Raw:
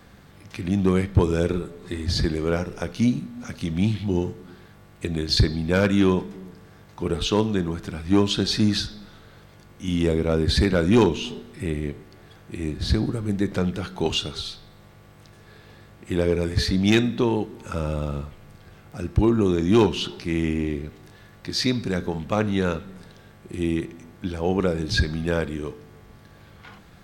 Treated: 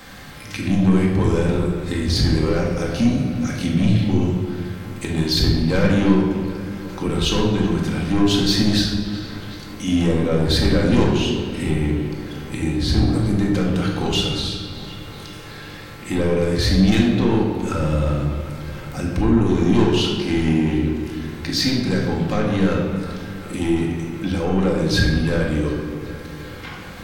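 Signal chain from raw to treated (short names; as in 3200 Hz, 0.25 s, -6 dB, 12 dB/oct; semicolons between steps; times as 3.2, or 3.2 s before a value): limiter -13.5 dBFS, peak gain reduction 4 dB; soft clip -19 dBFS, distortion -14 dB; on a send: darkening echo 0.374 s, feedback 68%, low-pass 3500 Hz, level -17 dB; on the sum: shoebox room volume 850 m³, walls mixed, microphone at 2.1 m; mismatched tape noise reduction encoder only; gain +3 dB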